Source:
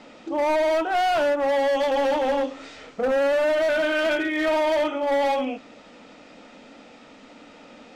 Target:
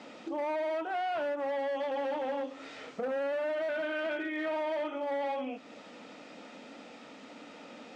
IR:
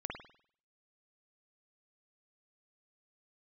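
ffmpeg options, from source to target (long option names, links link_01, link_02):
-filter_complex "[0:a]acrossover=split=3400[link_01][link_02];[link_02]acompressor=threshold=-53dB:ratio=4:attack=1:release=60[link_03];[link_01][link_03]amix=inputs=2:normalize=0,highpass=140,acompressor=threshold=-37dB:ratio=2,volume=-2dB"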